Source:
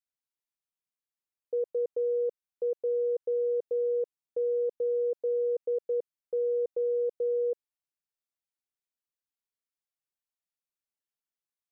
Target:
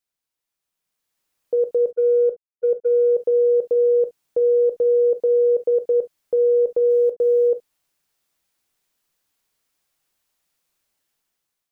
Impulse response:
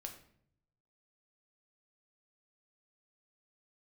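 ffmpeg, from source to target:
-filter_complex "[0:a]acontrast=51,asplit=3[a][b][c];[a]afade=t=out:st=1.9:d=0.02[d];[b]agate=range=-41dB:threshold=-22dB:ratio=16:detection=peak,afade=t=in:st=1.9:d=0.02,afade=t=out:st=3.11:d=0.02[e];[c]afade=t=in:st=3.11:d=0.02[f];[d][e][f]amix=inputs=3:normalize=0,alimiter=level_in=3.5dB:limit=-24dB:level=0:latency=1:release=26,volume=-3.5dB,asplit=3[g][h][i];[g]afade=t=out:st=6.89:d=0.02[j];[h]aeval=exprs='val(0)*gte(abs(val(0)),0.0015)':c=same,afade=t=in:st=6.89:d=0.02,afade=t=out:st=7.47:d=0.02[k];[i]afade=t=in:st=7.47:d=0.02[l];[j][k][l]amix=inputs=3:normalize=0,dynaudnorm=f=430:g=5:m=11.5dB,asplit=2[m][n];[1:a]atrim=start_sample=2205,atrim=end_sample=3087[o];[n][o]afir=irnorm=-1:irlink=0,volume=6dB[p];[m][p]amix=inputs=2:normalize=0,volume=-4.5dB"

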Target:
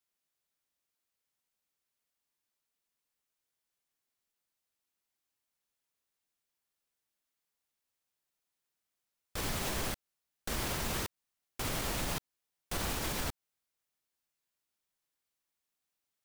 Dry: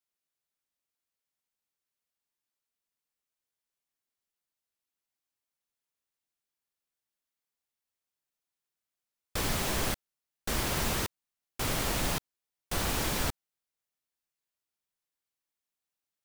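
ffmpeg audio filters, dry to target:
-af "alimiter=level_in=3.5dB:limit=-24dB:level=0:latency=1:release=160,volume=-3.5dB,volume=2.5dB"

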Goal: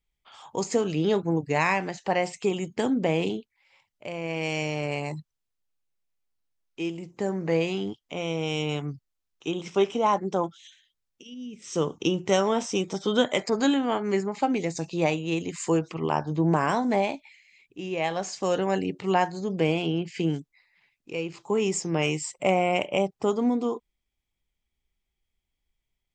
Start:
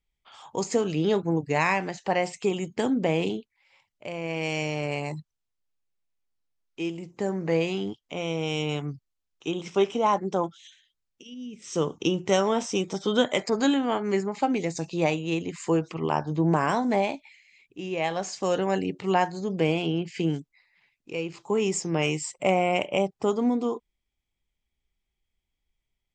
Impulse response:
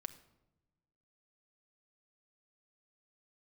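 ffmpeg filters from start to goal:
-filter_complex "[0:a]asettb=1/sr,asplit=3[a][b][c];[a]atrim=end=15.374[d];[b]atrim=start=15.37:end=15.79,asetpts=PTS-STARTPTS,afade=t=in:d=0.004:c=qsin,afade=t=out:st=0.416:d=0.004:c=qsin,highshelf=f=6.6k:g=11[e];[c]atrim=start=15.786[f];[d][e]acrossfade=d=0.004:c1=hsin:c2=qsin[g];[g][f]acrossfade=d=0.004:c1=qsin:c2=hsin"

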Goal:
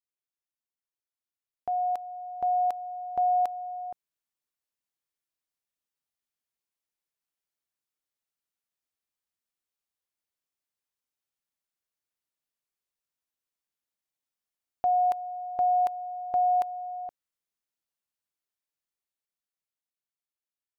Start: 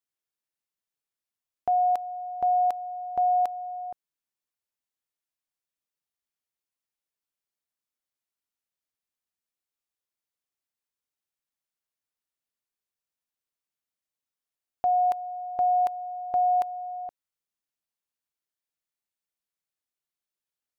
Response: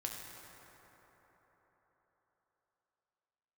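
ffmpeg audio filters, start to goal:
-af "dynaudnorm=f=490:g=9:m=7dB,volume=-8dB"

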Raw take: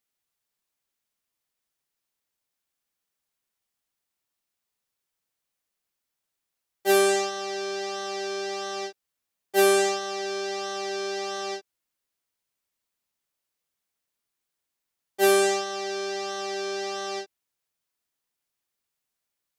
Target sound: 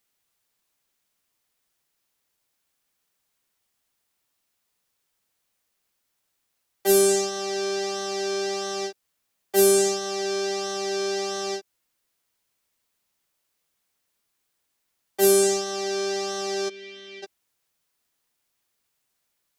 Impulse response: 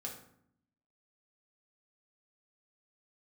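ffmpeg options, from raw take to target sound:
-filter_complex "[0:a]asplit=3[a][b][c];[a]afade=t=out:st=16.68:d=0.02[d];[b]asplit=3[e][f][g];[e]bandpass=f=270:t=q:w=8,volume=0dB[h];[f]bandpass=f=2.29k:t=q:w=8,volume=-6dB[i];[g]bandpass=f=3.01k:t=q:w=8,volume=-9dB[j];[h][i][j]amix=inputs=3:normalize=0,afade=t=in:st=16.68:d=0.02,afade=t=out:st=17.22:d=0.02[k];[c]afade=t=in:st=17.22:d=0.02[l];[d][k][l]amix=inputs=3:normalize=0,acrossover=split=380|5100[m][n][o];[n]acompressor=threshold=-38dB:ratio=6[p];[m][p][o]amix=inputs=3:normalize=0,volume=7.5dB"

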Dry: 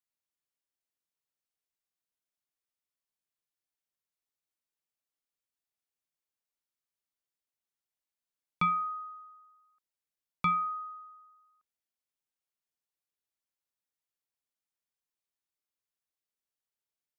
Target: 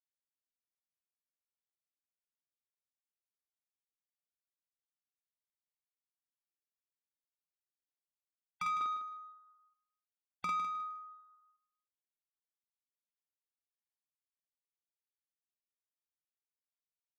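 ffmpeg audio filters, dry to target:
-filter_complex "[0:a]asetnsamples=n=441:p=0,asendcmd='8.81 highpass f 250',highpass=970,afftfilt=real='re*gte(hypot(re,im),0.01)':imag='im*gte(hypot(re,im),0.01)':win_size=1024:overlap=0.75,acompressor=threshold=-33dB:ratio=6,asoftclip=type=tanh:threshold=-30.5dB,aeval=exprs='0.0299*(cos(1*acos(clip(val(0)/0.0299,-1,1)))-cos(1*PI/2))+0.00119*(cos(5*acos(clip(val(0)/0.0299,-1,1)))-cos(5*PI/2))':c=same,asplit=2[a][b];[b]adelay=49,volume=-2dB[c];[a][c]amix=inputs=2:normalize=0,aecho=1:1:154|308|462:0.316|0.0696|0.0153"

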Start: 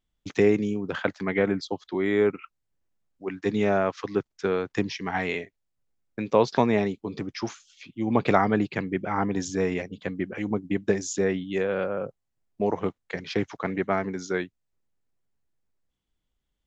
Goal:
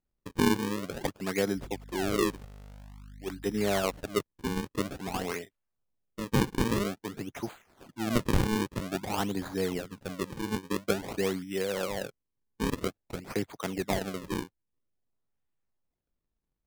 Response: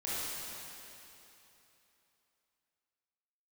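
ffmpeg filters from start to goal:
-filter_complex "[0:a]asettb=1/sr,asplit=3[a][b][c];[a]atrim=end=1.564[d];[b]atrim=start=1.56:end=4,asetpts=PTS-STARTPTS,afade=t=in:d=0.004:c=qsin,afade=t=out:st=2.436:d=0.004:c=qsin,aeval=exprs='val(0)+0.00891*(sin(2*PI*50*n/s)+sin(2*PI*2*50*n/s)/2+sin(2*PI*3*50*n/s)/3+sin(2*PI*4*50*n/s)/4+sin(2*PI*5*50*n/s)/5)':c=same[e];[c]atrim=start=3.996[f];[d][e]acrossfade=d=0.004:c1=hsin:c2=qsin[g];[g][f]acrossfade=d=0.004:c1=qsin:c2=hsin,acrusher=samples=38:mix=1:aa=0.000001:lfo=1:lforange=60.8:lforate=0.5,volume=-5dB"

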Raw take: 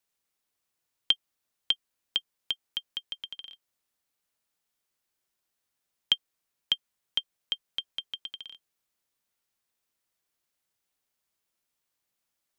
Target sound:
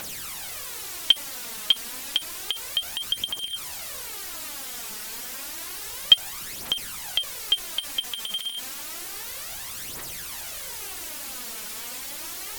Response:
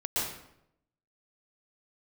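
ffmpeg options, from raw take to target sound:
-af "aeval=exprs='val(0)+0.5*0.0211*sgn(val(0))':c=same,aphaser=in_gain=1:out_gain=1:delay=4.8:decay=0.59:speed=0.3:type=triangular,volume=3.5dB" -ar 44100 -c:a aac -b:a 96k

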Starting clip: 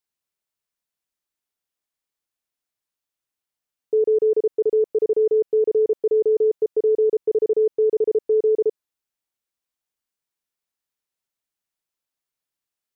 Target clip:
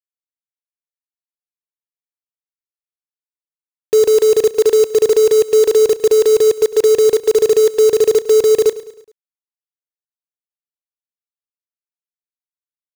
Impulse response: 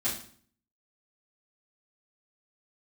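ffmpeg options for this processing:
-af "equalizer=f=97:w=1.3:g=-9.5,acrusher=bits=4:mix=0:aa=0.000001,aecho=1:1:105|210|315|420:0.141|0.0678|0.0325|0.0156,volume=8dB"

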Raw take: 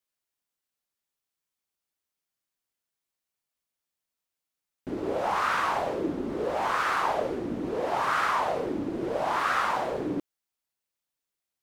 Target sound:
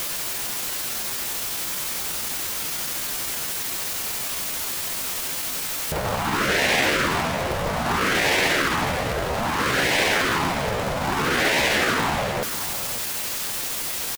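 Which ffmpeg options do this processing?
-filter_complex "[0:a]aeval=exprs='val(0)+0.5*0.0168*sgn(val(0))':c=same,afftfilt=real='re*lt(hypot(re,im),0.1)':imag='im*lt(hypot(re,im),0.1)':win_size=1024:overlap=0.75,asplit=2[a][b];[b]acompressor=mode=upward:threshold=-38dB:ratio=2.5,volume=-0.5dB[c];[a][c]amix=inputs=2:normalize=0,atempo=0.82,aecho=1:1:549:0.224,volume=8dB"

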